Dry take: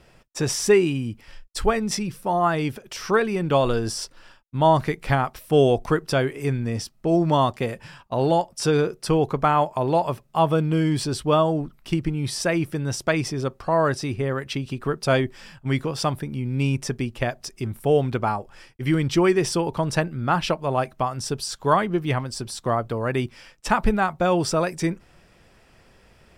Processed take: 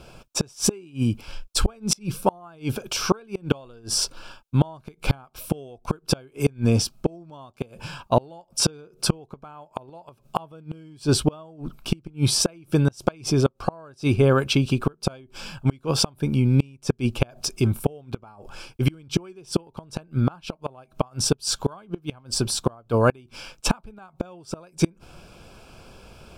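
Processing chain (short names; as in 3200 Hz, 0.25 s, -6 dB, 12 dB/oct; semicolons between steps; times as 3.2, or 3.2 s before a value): Butterworth band-stop 1900 Hz, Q 3.5; flipped gate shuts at -15 dBFS, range -32 dB; gain +8 dB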